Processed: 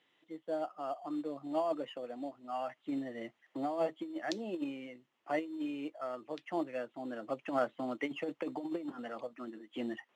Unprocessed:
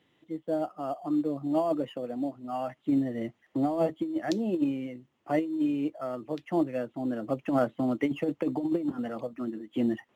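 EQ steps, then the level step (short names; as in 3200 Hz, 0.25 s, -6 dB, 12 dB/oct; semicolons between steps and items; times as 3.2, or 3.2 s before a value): HPF 970 Hz 6 dB/oct; air absorption 52 m; 0.0 dB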